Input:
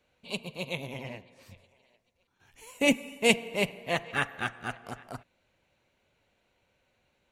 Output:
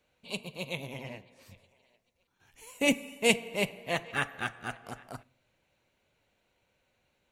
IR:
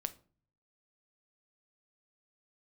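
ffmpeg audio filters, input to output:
-filter_complex "[0:a]asplit=2[a][b];[b]highshelf=f=5k:g=9.5[c];[1:a]atrim=start_sample=2205[d];[c][d]afir=irnorm=-1:irlink=0,volume=-7dB[e];[a][e]amix=inputs=2:normalize=0,volume=-5dB"

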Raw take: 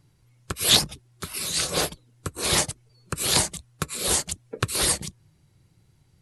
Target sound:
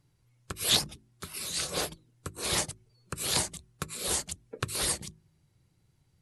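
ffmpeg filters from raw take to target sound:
-af "bandreject=f=53.15:t=h:w=4,bandreject=f=106.3:t=h:w=4,bandreject=f=159.45:t=h:w=4,bandreject=f=212.6:t=h:w=4,bandreject=f=265.75:t=h:w=4,bandreject=f=318.9:t=h:w=4,bandreject=f=372.05:t=h:w=4,volume=-7dB"

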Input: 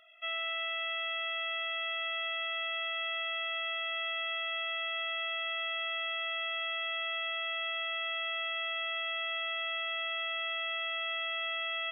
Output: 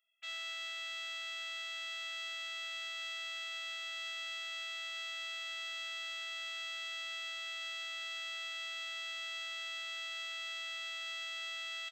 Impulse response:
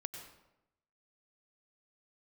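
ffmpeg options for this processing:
-filter_complex "[0:a]afwtdn=0.0141,aderivative,asplit=2[a][b];[b]aecho=0:1:44|62:0.335|0.237[c];[a][c]amix=inputs=2:normalize=0,volume=2dB"

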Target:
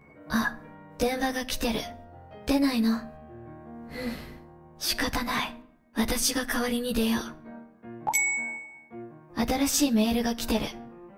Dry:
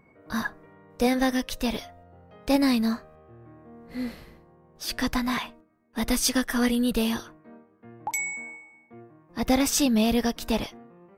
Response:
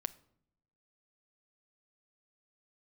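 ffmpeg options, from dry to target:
-filter_complex "[0:a]acompressor=threshold=-27dB:ratio=6,asplit=2[a][b];[1:a]atrim=start_sample=2205,adelay=14[c];[b][c]afir=irnorm=-1:irlink=0,volume=4.5dB[d];[a][d]amix=inputs=2:normalize=0"

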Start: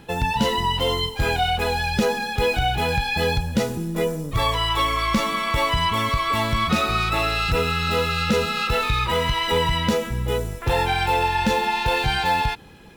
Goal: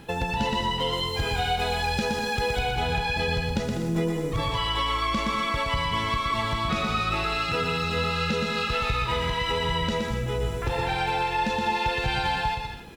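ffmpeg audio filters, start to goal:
-filter_complex "[0:a]acrossover=split=8500[a][b];[b]acompressor=threshold=-56dB:ratio=4:attack=1:release=60[c];[a][c]amix=inputs=2:normalize=0,asettb=1/sr,asplit=3[d][e][f];[d]atrim=end=0.934[g];[e]atrim=start=0.93:end=2.63,asetpts=PTS-STARTPTS,afade=t=in:d=0.004:c=qsin,afade=t=out:st=1.696:d=0.004:c=qsin,highshelf=f=6.4k:g=7.5[h];[f]atrim=start=2.626[i];[g][h]acrossfade=d=0.004:c1=hsin:c2=qsin[j];[j][i]acrossfade=d=0.004:c1=qsin:c2=hsin,asettb=1/sr,asplit=3[k][l][m];[k]atrim=end=7.244[n];[l]atrim=start=7.24:end=7.84,asetpts=PTS-STARTPTS,afade=t=in:d=0.004:c=qsin,afade=t=out:st=0.596:d=0.004:c=qsin,highpass=130[o];[m]atrim=start=7.836[p];[n][o]acrossfade=d=0.004:c1=hsin:c2=qsin[q];[q][p]acrossfade=d=0.004:c1=qsin:c2=hsin,acompressor=threshold=-26dB:ratio=4,aecho=1:1:120|198|248.7|281.7|303.1:0.631|0.398|0.251|0.158|0.1"

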